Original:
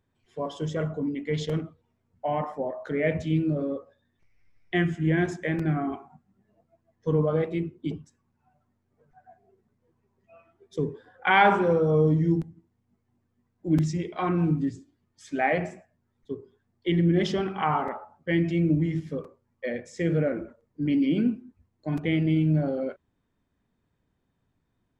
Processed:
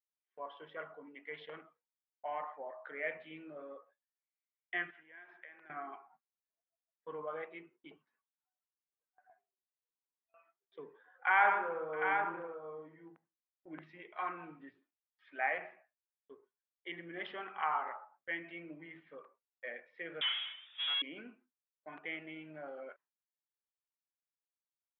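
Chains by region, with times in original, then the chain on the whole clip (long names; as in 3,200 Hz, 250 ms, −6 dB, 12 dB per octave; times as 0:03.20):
0:04.90–0:05.70: high-pass filter 560 Hz 6 dB per octave + downward compressor 12 to 1, threshold −40 dBFS
0:11.27–0:13.82: low-pass filter 2,400 Hz + multi-tap delay 119/658/743 ms −8.5/−17.5/−5.5 dB
0:20.21–0:21.02: power curve on the samples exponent 0.5 + voice inversion scrambler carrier 3,600 Hz
whole clip: high-pass filter 1,200 Hz 12 dB per octave; noise gate with hold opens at −52 dBFS; Bessel low-pass filter 1,700 Hz, order 8; level −1.5 dB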